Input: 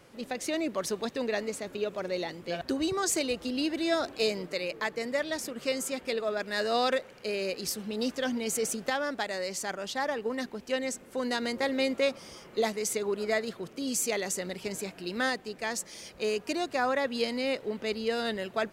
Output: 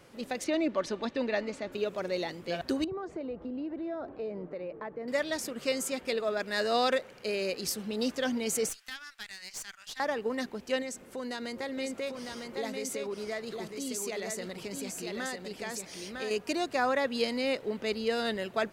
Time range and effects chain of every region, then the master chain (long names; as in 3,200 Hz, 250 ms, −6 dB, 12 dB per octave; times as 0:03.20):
0:00.44–0:01.72: low-pass filter 4,100 Hz + comb filter 3.4 ms, depth 36%
0:02.84–0:05.08: low-pass filter 1,000 Hz + downward compressor 3 to 1, threshold −35 dBFS
0:08.69–0:10.00: Bessel high-pass filter 2,100 Hz, order 4 + tube saturation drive 31 dB, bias 0.7
0:10.82–0:16.31: downward compressor 2 to 1, threshold −38 dBFS + single-tap delay 953 ms −4.5 dB
whole clip: no processing